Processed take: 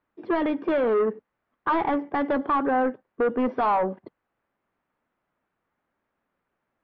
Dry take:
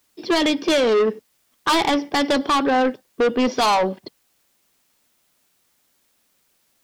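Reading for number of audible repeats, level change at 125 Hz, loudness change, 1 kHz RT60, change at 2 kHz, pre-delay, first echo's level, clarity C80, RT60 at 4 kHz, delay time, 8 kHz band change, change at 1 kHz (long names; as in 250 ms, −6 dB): no echo audible, −5.0 dB, −5.5 dB, no reverb audible, −8.0 dB, no reverb audible, no echo audible, no reverb audible, no reverb audible, no echo audible, below −40 dB, −4.0 dB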